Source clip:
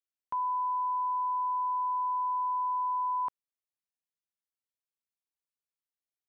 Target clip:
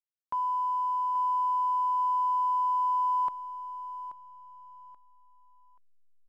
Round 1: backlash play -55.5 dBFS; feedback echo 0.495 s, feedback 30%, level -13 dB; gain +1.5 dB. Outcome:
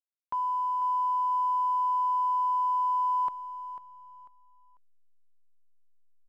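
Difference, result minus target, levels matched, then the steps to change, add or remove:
echo 0.336 s early
change: feedback echo 0.831 s, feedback 30%, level -13 dB

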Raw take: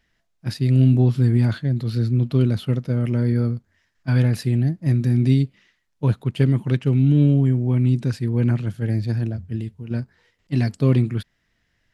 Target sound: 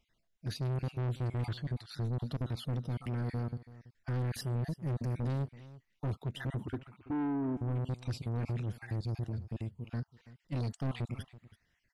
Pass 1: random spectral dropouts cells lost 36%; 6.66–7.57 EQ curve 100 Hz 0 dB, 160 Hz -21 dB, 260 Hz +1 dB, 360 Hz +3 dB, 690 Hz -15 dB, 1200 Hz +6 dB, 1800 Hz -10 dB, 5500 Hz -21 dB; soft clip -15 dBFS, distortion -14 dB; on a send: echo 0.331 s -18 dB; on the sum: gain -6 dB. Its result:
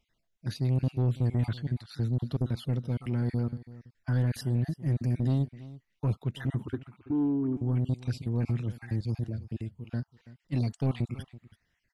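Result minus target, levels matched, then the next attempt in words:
soft clip: distortion -8 dB
random spectral dropouts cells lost 36%; 6.66–7.57 EQ curve 100 Hz 0 dB, 160 Hz -21 dB, 260 Hz +1 dB, 360 Hz +3 dB, 690 Hz -15 dB, 1200 Hz +6 dB, 1800 Hz -10 dB, 5500 Hz -21 dB; soft clip -25 dBFS, distortion -6 dB; on a send: echo 0.331 s -18 dB; on the sum: gain -6 dB

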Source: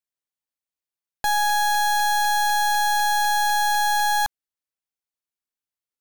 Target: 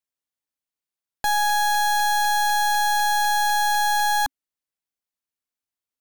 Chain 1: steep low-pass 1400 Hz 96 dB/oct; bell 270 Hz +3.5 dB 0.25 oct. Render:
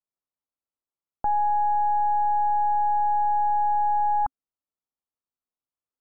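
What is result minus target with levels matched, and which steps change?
1000 Hz band +3.0 dB
remove: steep low-pass 1400 Hz 96 dB/oct

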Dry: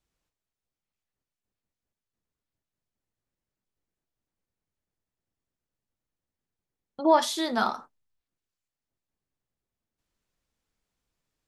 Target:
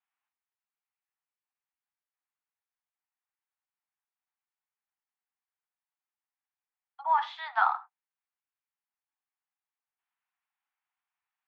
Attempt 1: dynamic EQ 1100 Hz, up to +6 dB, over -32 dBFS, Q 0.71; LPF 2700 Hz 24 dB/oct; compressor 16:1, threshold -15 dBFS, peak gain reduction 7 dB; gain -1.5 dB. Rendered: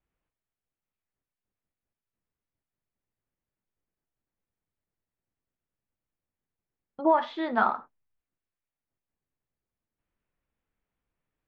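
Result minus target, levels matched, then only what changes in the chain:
1000 Hz band -2.5 dB
add after compressor: steep high-pass 730 Hz 96 dB/oct

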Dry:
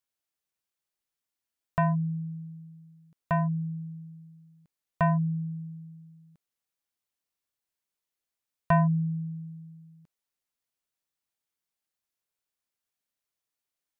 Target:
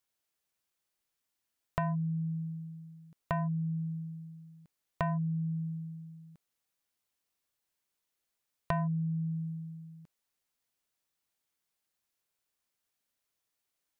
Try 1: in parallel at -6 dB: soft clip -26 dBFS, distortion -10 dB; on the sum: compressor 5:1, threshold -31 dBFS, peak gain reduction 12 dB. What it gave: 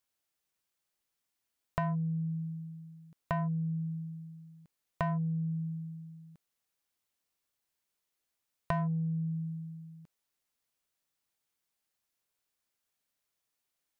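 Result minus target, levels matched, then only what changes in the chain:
soft clip: distortion +15 dB
change: soft clip -15 dBFS, distortion -25 dB

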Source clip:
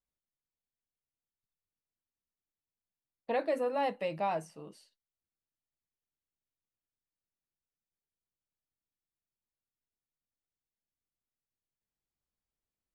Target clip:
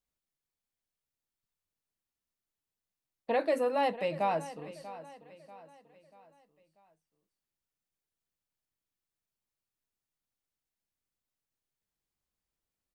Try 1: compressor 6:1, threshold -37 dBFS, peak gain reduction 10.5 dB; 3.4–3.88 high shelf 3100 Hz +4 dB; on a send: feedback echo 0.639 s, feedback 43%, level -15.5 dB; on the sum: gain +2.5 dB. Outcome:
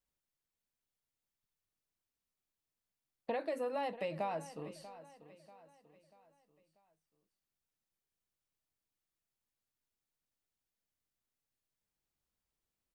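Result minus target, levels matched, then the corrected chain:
compressor: peak gain reduction +10.5 dB
3.4–3.88 high shelf 3100 Hz +4 dB; on a send: feedback echo 0.639 s, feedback 43%, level -15.5 dB; on the sum: gain +2.5 dB

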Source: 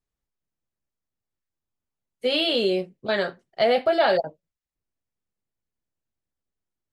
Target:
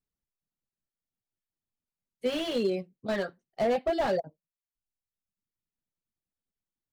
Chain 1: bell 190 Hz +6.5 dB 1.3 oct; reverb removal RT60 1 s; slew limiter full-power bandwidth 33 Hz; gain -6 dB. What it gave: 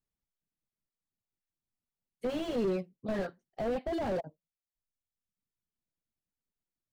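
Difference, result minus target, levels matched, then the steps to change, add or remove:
slew limiter: distortion +11 dB
change: slew limiter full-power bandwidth 96 Hz

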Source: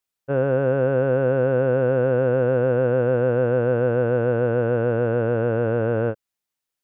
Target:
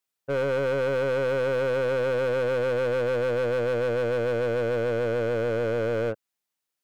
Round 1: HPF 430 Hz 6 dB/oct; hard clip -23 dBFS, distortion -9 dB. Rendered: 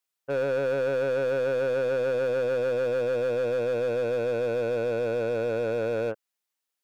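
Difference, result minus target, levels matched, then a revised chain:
125 Hz band -4.5 dB
HPF 130 Hz 6 dB/oct; hard clip -23 dBFS, distortion -7 dB

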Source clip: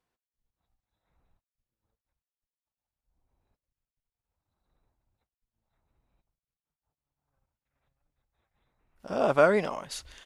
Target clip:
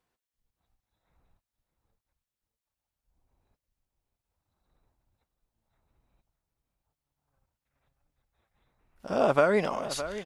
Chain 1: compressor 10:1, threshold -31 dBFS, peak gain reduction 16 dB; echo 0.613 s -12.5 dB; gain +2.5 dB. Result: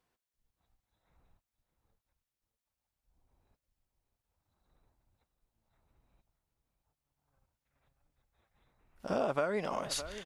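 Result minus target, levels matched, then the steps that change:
compressor: peak gain reduction +10 dB
change: compressor 10:1, threshold -20 dBFS, peak gain reduction 6 dB

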